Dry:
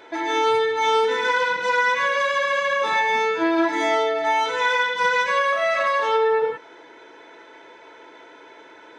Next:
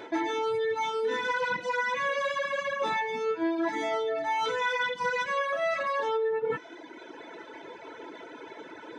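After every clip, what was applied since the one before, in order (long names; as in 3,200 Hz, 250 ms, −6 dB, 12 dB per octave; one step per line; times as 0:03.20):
parametric band 170 Hz +9 dB 2.8 octaves
reversed playback
downward compressor 16 to 1, threshold −25 dBFS, peak gain reduction 15 dB
reversed playback
reverb reduction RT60 1.6 s
level +2 dB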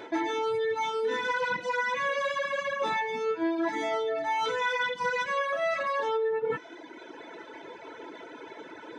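no processing that can be heard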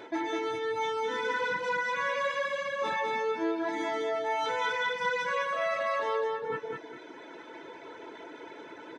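repeating echo 204 ms, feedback 30%, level −4 dB
level −3 dB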